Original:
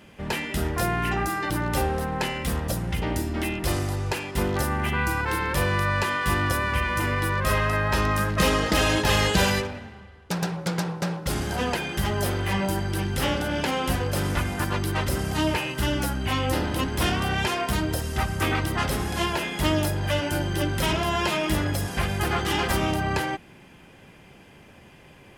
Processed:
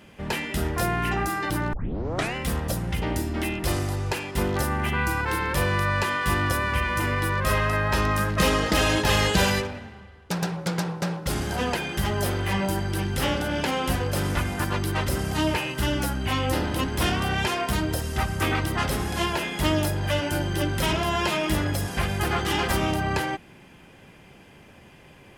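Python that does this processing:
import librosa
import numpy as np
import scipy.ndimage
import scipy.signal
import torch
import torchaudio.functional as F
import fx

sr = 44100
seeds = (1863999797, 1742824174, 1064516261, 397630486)

y = fx.edit(x, sr, fx.tape_start(start_s=1.73, length_s=0.62), tone=tone)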